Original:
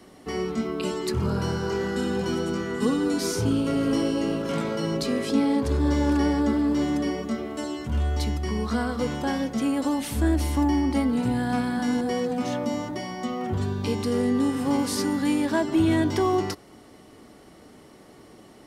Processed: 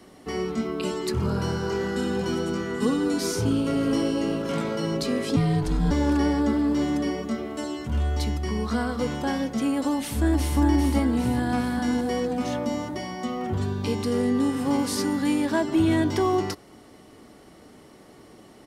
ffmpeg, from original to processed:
-filter_complex "[0:a]asettb=1/sr,asplit=3[a][b][c];[a]atrim=end=5.364[d];[b]atrim=start=5.36:end=5.91,asetpts=PTS-STARTPTS,afade=t=in:d=0.004:c=qsin,afade=t=out:st=0.546:d=0.004:c=qsin,afreqshift=-120[e];[c]atrim=start=5.906[f];[d][e]acrossfade=d=0.004:c1=hsin:c2=qsin[g];[g][f]acrossfade=d=0.004:c1=qsin:c2=hsin,asplit=2[h][i];[i]afade=t=in:st=9.93:d=0.01,afade=t=out:st=10.59:d=0.01,aecho=0:1:400|800|1200|1600|2000|2400|2800|3200:0.562341|0.337405|0.202443|0.121466|0.0728794|0.0437277|0.0262366|0.015742[j];[h][j]amix=inputs=2:normalize=0"

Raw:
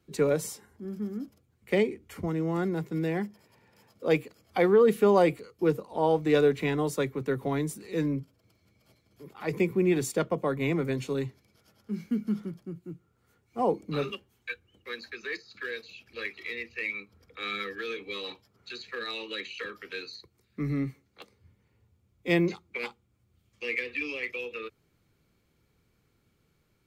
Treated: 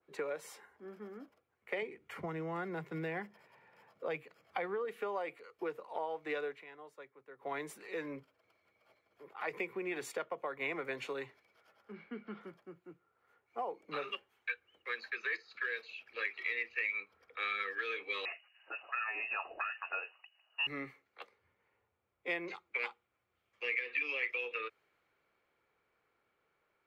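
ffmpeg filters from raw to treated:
-filter_complex "[0:a]asettb=1/sr,asplit=3[a][b][c];[a]atrim=end=1.824[d];[b]atrim=start=1.82:end=4.85,asetpts=PTS-STARTPTS,afade=t=in:d=0.004:c=qsin,afade=t=out:st=3.026:d=0.004:c=qsin,equalizer=f=150:w=1.5:g=14[e];[c]atrim=start=4.846[f];[d][e]acrossfade=d=0.004:c1=hsin:c2=qsin[g];[g][f]acrossfade=d=0.004:c1=qsin:c2=hsin,asettb=1/sr,asplit=3[h][i][j];[h]atrim=end=11.924[k];[i]atrim=start=11.92:end=12.41,asetpts=PTS-STARTPTS,afade=t=in:d=0.004:c=qsin,afade=t=out:st=0.486:d=0.004:c=qsin,lowpass=f=3.9k:w=0.5412,lowpass=f=3.9k:w=1.3066[l];[j]atrim=start=12.406[m];[k][l]acrossfade=d=0.004:c1=hsin:c2=qsin[n];[n][m]acrossfade=d=0.004:c1=qsin:c2=hsin,asettb=1/sr,asplit=3[o][p][q];[o]atrim=end=18.254[r];[p]atrim=start=18.25:end=20.67,asetpts=PTS-STARTPTS,afade=t=in:d=0.004:c=qsin,afade=t=out:st=2.416:d=0.004:c=qsin,lowpass=f=2.6k:t=q:w=0.5098,lowpass=f=2.6k:t=q:w=0.6013,lowpass=f=2.6k:t=q:w=0.9,lowpass=f=2.6k:t=q:w=2.563,afreqshift=-3000[s];[q]atrim=start=20.666[t];[r][s]acrossfade=d=0.004:c1=hsin:c2=qsin[u];[u][t]acrossfade=d=0.004:c1=qsin:c2=hsin,asplit=3[v][w][x];[v]atrim=end=6.65,asetpts=PTS-STARTPTS,afade=t=out:st=6.48:d=0.17:silence=0.1[y];[w]atrim=start=6.65:end=7.38,asetpts=PTS-STARTPTS,volume=-20dB[z];[x]atrim=start=7.38,asetpts=PTS-STARTPTS,afade=t=in:d=0.17:silence=0.1[aa];[y][z][aa]concat=n=3:v=0:a=1,acrossover=split=470 2500:gain=0.0631 1 0.1[ab][ac][ad];[ab][ac][ad]amix=inputs=3:normalize=0,acompressor=threshold=-38dB:ratio=6,adynamicequalizer=threshold=0.00178:dfrequency=1600:dqfactor=0.7:tfrequency=1600:tqfactor=0.7:attack=5:release=100:ratio=0.375:range=3.5:mode=boostabove:tftype=highshelf,volume=1.5dB"

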